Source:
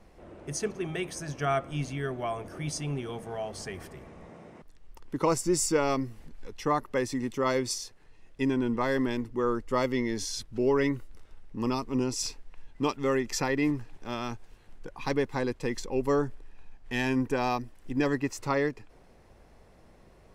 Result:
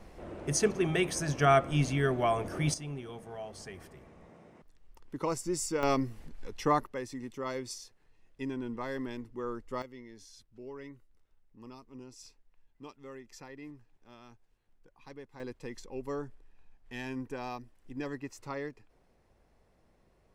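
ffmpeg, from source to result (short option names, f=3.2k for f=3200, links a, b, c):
-af "asetnsamples=n=441:p=0,asendcmd='2.74 volume volume -7dB;5.83 volume volume 0dB;6.87 volume volume -9.5dB;9.82 volume volume -20dB;15.4 volume volume -11dB',volume=4.5dB"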